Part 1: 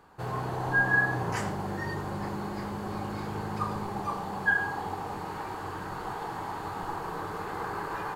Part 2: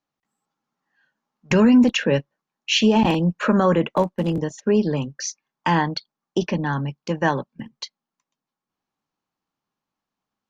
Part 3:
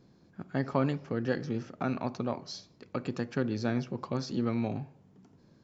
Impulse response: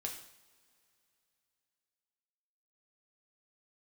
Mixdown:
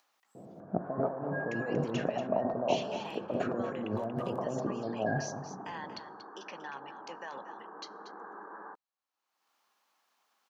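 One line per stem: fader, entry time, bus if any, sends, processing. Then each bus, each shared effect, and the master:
−11.0 dB, 0.60 s, bus A, no send, no echo send, Chebyshev band-pass filter 200–1,700 Hz, order 5
−12.0 dB, 0.00 s, bus A, send −19 dB, echo send −12.5 dB, brickwall limiter −15.5 dBFS, peak gain reduction 8.5 dB; high-pass filter 680 Hz 12 dB per octave
+1.0 dB, 0.35 s, no bus, send −7 dB, echo send −8.5 dB, high-pass filter 150 Hz 12 dB per octave; compressor whose output falls as the input rises −41 dBFS, ratio −1; low-pass with resonance 660 Hz, resonance Q 4.9
bus A: 0.0 dB, upward compression, threshold −55 dBFS; brickwall limiter −32.5 dBFS, peak gain reduction 8.5 dB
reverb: on, pre-delay 3 ms
echo: single-tap delay 234 ms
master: no processing

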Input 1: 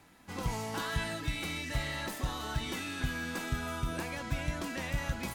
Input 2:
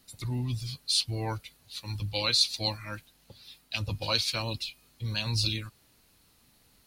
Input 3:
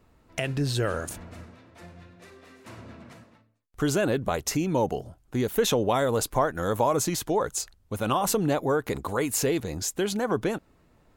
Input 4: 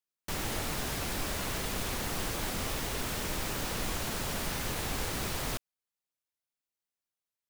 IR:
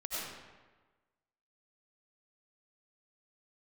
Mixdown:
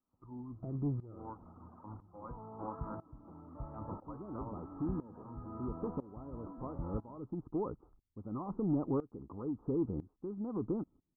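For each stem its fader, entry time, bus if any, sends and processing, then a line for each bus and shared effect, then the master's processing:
−4.0 dB, 1.85 s, no send, no processing
−7.5 dB, 0.00 s, no send, octave-band graphic EQ 125/250/1,000/2,000 Hz −6/+7/+5/+12 dB
−14.5 dB, 0.25 s, no send, low shelf with overshoot 400 Hz +8 dB, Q 1.5; speech leveller within 5 dB 2 s; leveller curve on the samples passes 1; automatic ducking −6 dB, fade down 1.25 s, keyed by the second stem
−8.5 dB, 0.90 s, no send, high-pass filter 800 Hz; reverb reduction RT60 1.7 s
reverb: not used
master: Chebyshev low-pass with heavy ripple 1,300 Hz, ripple 3 dB; shaped tremolo saw up 1 Hz, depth 90%

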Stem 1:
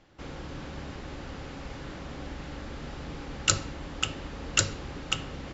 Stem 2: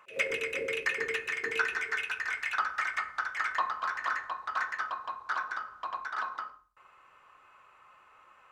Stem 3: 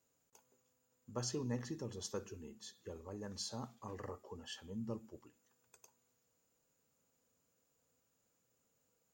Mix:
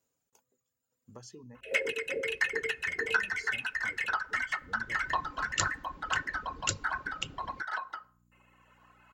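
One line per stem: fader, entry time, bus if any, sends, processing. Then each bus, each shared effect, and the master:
0:04.51 −17.5 dB → 0:05.09 −7 dB, 2.10 s, no send, no processing
+2.5 dB, 1.55 s, no send, mains hum 60 Hz, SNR 26 dB; notch comb filter 1,200 Hz
−0.5 dB, 0.00 s, muted 0:01.61–0:02.83, no send, downward compressor 6 to 1, threshold −45 dBFS, peak gain reduction 11 dB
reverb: not used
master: reverb reduction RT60 1.4 s

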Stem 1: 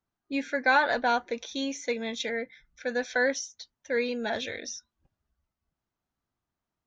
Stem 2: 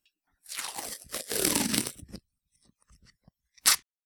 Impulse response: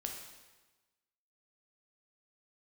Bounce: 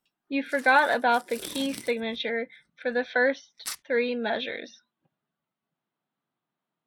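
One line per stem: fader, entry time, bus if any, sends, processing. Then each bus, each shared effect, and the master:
+3.0 dB, 0.00 s, no send, elliptic band-pass filter 150–3,700 Hz, stop band 40 dB
−4.5 dB, 0.00 s, no send, automatic ducking −8 dB, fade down 0.55 s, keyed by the first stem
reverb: not used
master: no processing

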